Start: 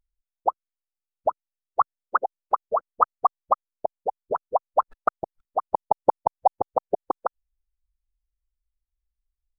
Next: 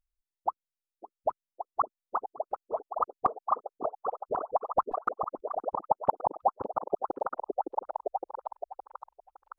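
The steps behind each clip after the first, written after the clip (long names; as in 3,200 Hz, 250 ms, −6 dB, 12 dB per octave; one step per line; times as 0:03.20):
auto-filter notch saw up 4.6 Hz 370–1,700 Hz
echo through a band-pass that steps 563 ms, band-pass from 320 Hz, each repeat 0.7 octaves, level 0 dB
level −5 dB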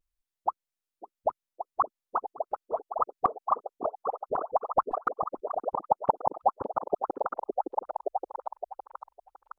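pitch vibrato 0.48 Hz 25 cents
level +1.5 dB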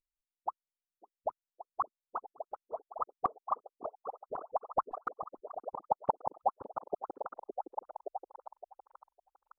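expander for the loud parts 1.5 to 1, over −36 dBFS
level −5.5 dB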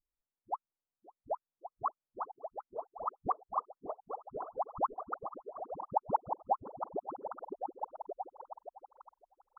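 low-pass filter 1,100 Hz 12 dB per octave
all-pass dispersion highs, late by 65 ms, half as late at 450 Hz
dynamic equaliser 540 Hz, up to −5 dB, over −47 dBFS, Q 1.2
level +3.5 dB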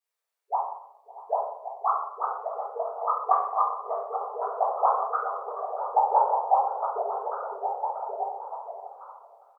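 linear-phase brick-wall high-pass 400 Hz
single-tap delay 635 ms −18 dB
convolution reverb RT60 0.85 s, pre-delay 3 ms, DRR −9 dB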